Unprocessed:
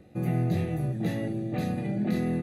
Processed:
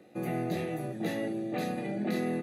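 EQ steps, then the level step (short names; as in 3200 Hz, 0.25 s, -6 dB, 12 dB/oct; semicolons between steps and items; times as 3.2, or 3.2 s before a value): HPF 290 Hz 12 dB/oct; +1.5 dB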